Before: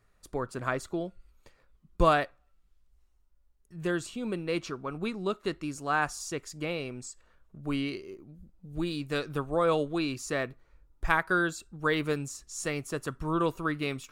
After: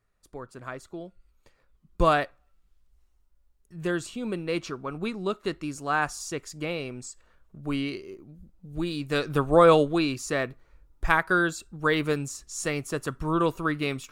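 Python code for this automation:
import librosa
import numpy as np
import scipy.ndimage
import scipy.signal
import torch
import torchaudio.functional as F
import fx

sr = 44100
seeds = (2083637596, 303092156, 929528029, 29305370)

y = fx.gain(x, sr, db=fx.line((0.8, -7.0), (2.15, 2.0), (8.94, 2.0), (9.59, 10.0), (10.17, 3.5)))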